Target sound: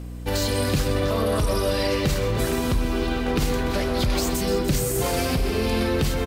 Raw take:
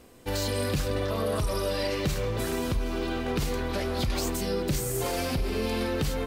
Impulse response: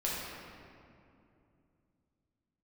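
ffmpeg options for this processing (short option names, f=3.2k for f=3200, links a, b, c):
-filter_complex "[0:a]asplit=2[a][b];[b]aecho=0:1:126:0.237[c];[a][c]amix=inputs=2:normalize=0,aeval=exprs='val(0)+0.0126*(sin(2*PI*60*n/s)+sin(2*PI*2*60*n/s)/2+sin(2*PI*3*60*n/s)/3+sin(2*PI*4*60*n/s)/4+sin(2*PI*5*60*n/s)/5)':c=same,asplit=2[d][e];[e]aecho=0:1:296:0.224[f];[d][f]amix=inputs=2:normalize=0,volume=5dB"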